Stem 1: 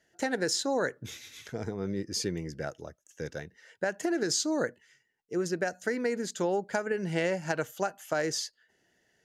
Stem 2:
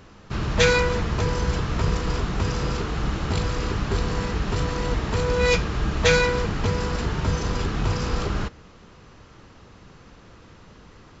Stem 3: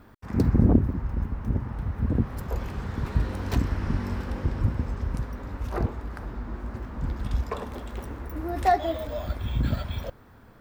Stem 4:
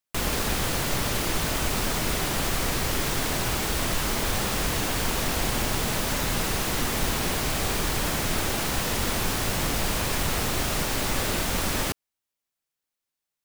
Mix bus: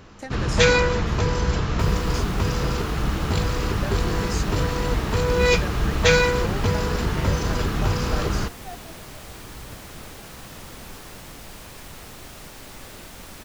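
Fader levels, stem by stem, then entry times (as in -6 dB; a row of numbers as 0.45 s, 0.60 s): -6.0 dB, +1.5 dB, -19.0 dB, -14.5 dB; 0.00 s, 0.00 s, 0.00 s, 1.65 s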